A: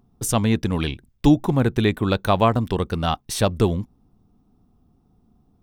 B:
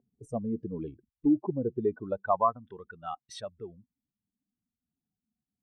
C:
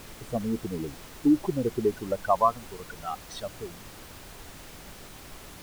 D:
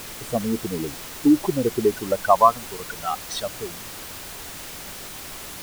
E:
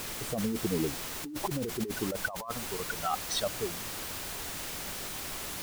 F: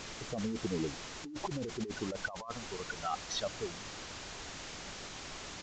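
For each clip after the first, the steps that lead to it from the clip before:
spectral contrast raised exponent 2.3; band-pass sweep 480 Hz -> 1800 Hz, 1.75–2.8
added noise pink -48 dBFS; gain +3 dB
tilt +1.5 dB/oct; gain +7.5 dB
negative-ratio compressor -26 dBFS, ratio -1; gain -6 dB
downsampling 16000 Hz; gain -4.5 dB

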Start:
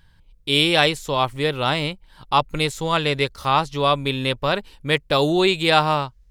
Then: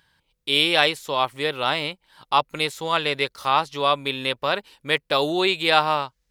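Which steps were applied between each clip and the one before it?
dynamic EQ 7200 Hz, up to -6 dB, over -41 dBFS, Q 1.6; HPF 500 Hz 6 dB/oct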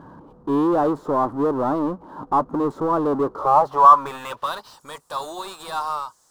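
band-pass sweep 280 Hz -> 7800 Hz, 3.24–4.86; power-law curve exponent 0.5; resonant high shelf 1600 Hz -12.5 dB, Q 3; gain +3 dB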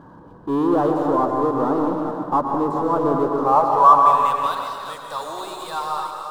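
reverse delay 0.235 s, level -7 dB; plate-style reverb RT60 1.9 s, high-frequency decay 0.85×, pre-delay 0.1 s, DRR 3 dB; gain -1 dB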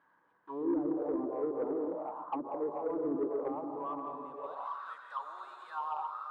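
auto-wah 300–2200 Hz, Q 3.6, down, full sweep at -14.5 dBFS; soft clip -17.5 dBFS, distortion -18 dB; gain -7 dB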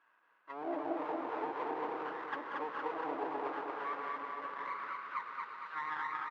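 minimum comb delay 0.72 ms; BPF 530–2800 Hz; on a send: feedback echo 0.23 s, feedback 48%, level -3 dB; on the sum: gain +1 dB

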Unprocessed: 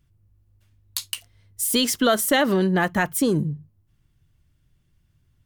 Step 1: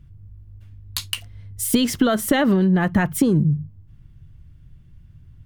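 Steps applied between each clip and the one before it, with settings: tone controls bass +11 dB, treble -8 dB; compressor 12:1, threshold -21 dBFS, peak gain reduction 11 dB; gain +7 dB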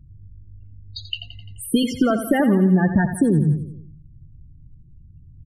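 loudest bins only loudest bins 16; on a send: feedback echo 86 ms, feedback 55%, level -10.5 dB

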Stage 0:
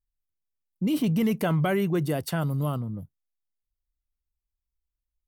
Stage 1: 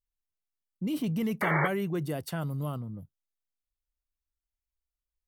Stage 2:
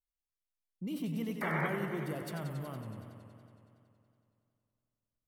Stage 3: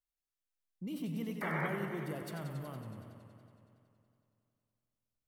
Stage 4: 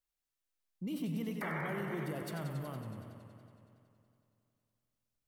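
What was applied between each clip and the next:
painted sound noise, 1.41–1.68, 310–2300 Hz -22 dBFS; gain -6 dB
warbling echo 93 ms, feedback 79%, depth 110 cents, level -8 dB; gain -7.5 dB
Schroeder reverb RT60 1.7 s, combs from 30 ms, DRR 14.5 dB; gain -2.5 dB
limiter -31 dBFS, peak gain reduction 7.5 dB; gain +2 dB

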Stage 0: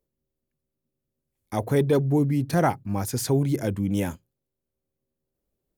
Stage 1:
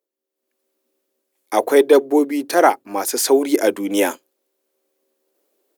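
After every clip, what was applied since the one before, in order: inverse Chebyshev high-pass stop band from 160 Hz, stop band 40 dB; AGC gain up to 16.5 dB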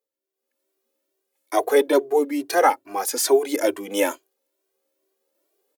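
bell 170 Hz -10 dB 1 oct; endless flanger 2 ms +2.3 Hz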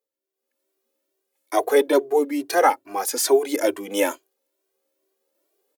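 nothing audible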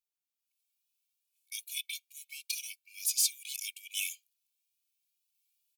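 brick-wall FIR high-pass 2200 Hz; gain -3.5 dB

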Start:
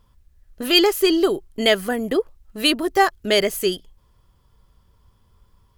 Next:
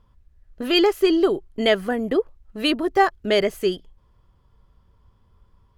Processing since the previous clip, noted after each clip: LPF 2100 Hz 6 dB/oct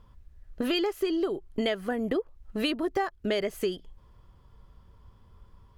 compressor 6:1, threshold -29 dBFS, peak gain reduction 16.5 dB; gain +3 dB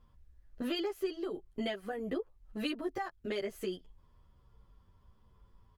endless flanger 9.9 ms -1.2 Hz; gain -5 dB

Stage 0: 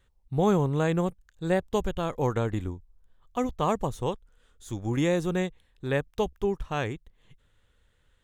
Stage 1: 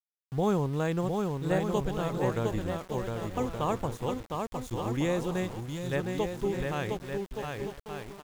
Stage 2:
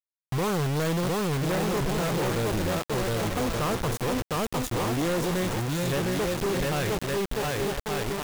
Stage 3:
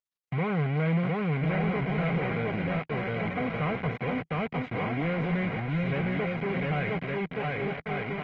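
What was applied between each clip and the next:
bouncing-ball echo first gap 0.71 s, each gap 0.65×, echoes 5; spectral gain 5.6–5.93, 210–2800 Hz -7 dB; sample gate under -39 dBFS; gain -4 dB
reverse; upward compressor, threshold -32 dBFS; reverse; companded quantiser 2-bit
speaker cabinet 120–2500 Hz, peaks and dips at 160 Hz +6 dB, 340 Hz -10 dB, 560 Hz -5 dB, 810 Hz +4 dB, 1200 Hz -7 dB, 2200 Hz +8 dB; notch comb 880 Hz; Opus 20 kbps 48000 Hz

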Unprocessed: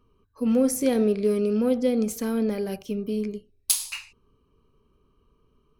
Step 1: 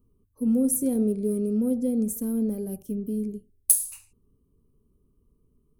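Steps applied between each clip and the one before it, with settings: EQ curve 250 Hz 0 dB, 2000 Hz -23 dB, 5000 Hz -17 dB, 9500 Hz +5 dB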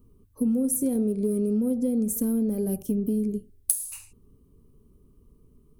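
compressor 6:1, threshold -31 dBFS, peak gain reduction 17 dB; gain +8.5 dB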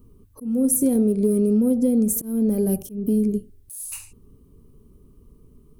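auto swell 0.238 s; gain +6 dB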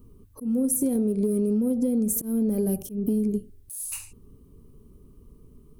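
compressor 5:1, threshold -21 dBFS, peak gain reduction 6 dB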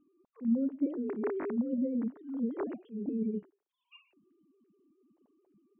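sine-wave speech; gain -8.5 dB

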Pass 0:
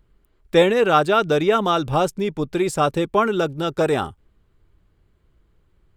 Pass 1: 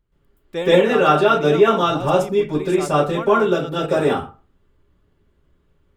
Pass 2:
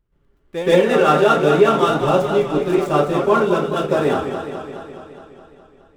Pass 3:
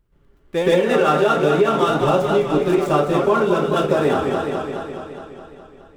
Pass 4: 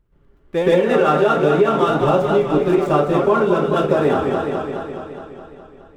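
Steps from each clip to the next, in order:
reverb RT60 0.35 s, pre-delay 0.12 s, DRR -12.5 dB; gain -11 dB
median filter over 9 samples; warbling echo 0.209 s, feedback 66%, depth 89 cents, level -8 dB
compressor 3:1, threshold -20 dBFS, peak gain reduction 10 dB; gain +5 dB
high shelf 3200 Hz -8 dB; gain +1.5 dB

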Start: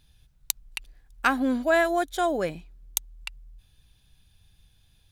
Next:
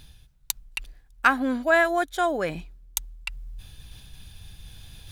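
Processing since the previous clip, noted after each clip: reverse; upward compressor, threshold -26 dBFS; reverse; dynamic EQ 1500 Hz, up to +6 dB, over -39 dBFS, Q 0.77; gain -1.5 dB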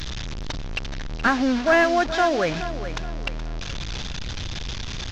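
delta modulation 32 kbps, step -29 dBFS; in parallel at -6 dB: hard clip -25 dBFS, distortion -6 dB; on the sum: feedback echo 0.423 s, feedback 37%, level -12 dB; gain +1.5 dB

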